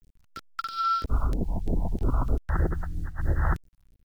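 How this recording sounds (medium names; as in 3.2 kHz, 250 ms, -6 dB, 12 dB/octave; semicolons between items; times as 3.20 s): a quantiser's noise floor 10-bit, dither none; phasing stages 2, 3.1 Hz, lowest notch 370–1100 Hz; random flutter of the level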